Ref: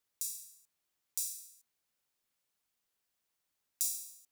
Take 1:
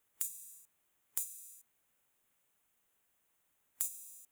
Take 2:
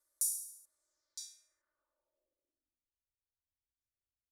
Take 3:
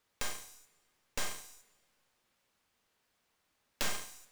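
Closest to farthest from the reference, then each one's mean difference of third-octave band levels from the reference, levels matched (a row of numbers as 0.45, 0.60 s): 1, 2, 3; 5.0, 7.5, 19.0 dB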